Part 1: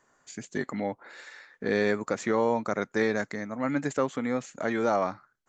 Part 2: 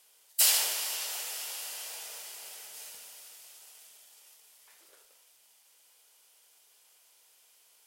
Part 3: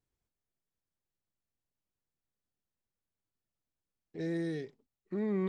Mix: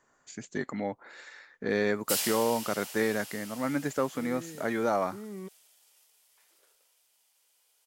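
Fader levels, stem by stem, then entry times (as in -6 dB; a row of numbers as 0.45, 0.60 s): -2.0, -6.5, -9.0 dB; 0.00, 1.70, 0.00 s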